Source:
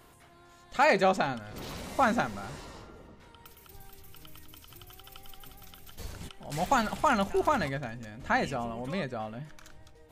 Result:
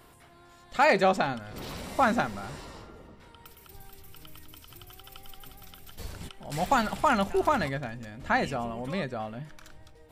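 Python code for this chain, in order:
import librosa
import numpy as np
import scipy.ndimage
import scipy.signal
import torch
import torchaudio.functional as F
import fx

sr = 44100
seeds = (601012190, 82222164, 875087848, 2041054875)

y = fx.notch(x, sr, hz=6500.0, q=12.0)
y = F.gain(torch.from_numpy(y), 1.5).numpy()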